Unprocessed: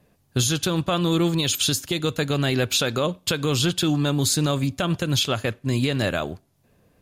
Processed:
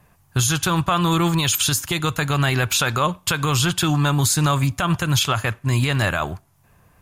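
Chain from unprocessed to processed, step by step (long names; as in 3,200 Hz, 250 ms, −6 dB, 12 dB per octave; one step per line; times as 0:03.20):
octave-band graphic EQ 250/500/1,000/4,000 Hz −9/−10/+6/−7 dB
boost into a limiter +17 dB
level −8.5 dB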